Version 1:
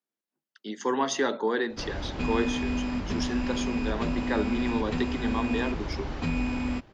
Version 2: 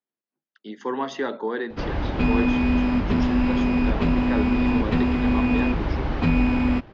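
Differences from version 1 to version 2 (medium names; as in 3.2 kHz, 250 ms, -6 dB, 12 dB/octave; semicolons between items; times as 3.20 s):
background +9.0 dB; master: add distance through air 200 m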